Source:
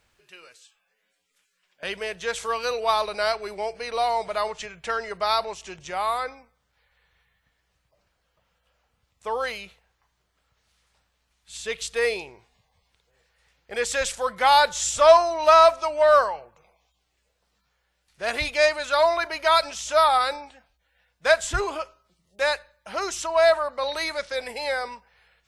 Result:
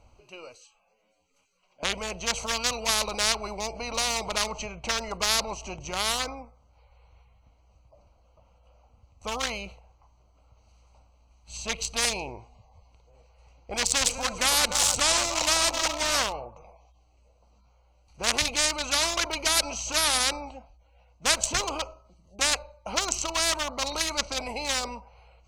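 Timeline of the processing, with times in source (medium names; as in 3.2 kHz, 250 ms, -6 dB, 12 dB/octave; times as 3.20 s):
13.80–16.22 s: backward echo that repeats 147 ms, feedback 62%, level -14 dB
whole clip: local Wiener filter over 25 samples; fifteen-band graphic EQ 160 Hz -10 dB, 400 Hz -10 dB, 1.6 kHz -8 dB, 6.3 kHz +10 dB; spectrum-flattening compressor 4:1; trim +3 dB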